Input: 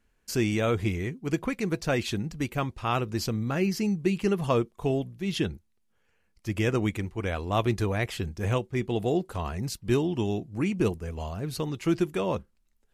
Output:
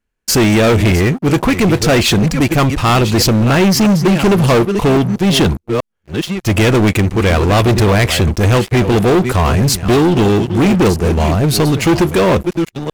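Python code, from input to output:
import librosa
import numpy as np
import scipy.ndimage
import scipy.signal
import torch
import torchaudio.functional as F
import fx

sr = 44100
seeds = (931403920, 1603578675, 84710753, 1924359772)

y = fx.reverse_delay(x, sr, ms=645, wet_db=-13.0)
y = fx.leveller(y, sr, passes=5)
y = F.gain(torch.from_numpy(y), 4.5).numpy()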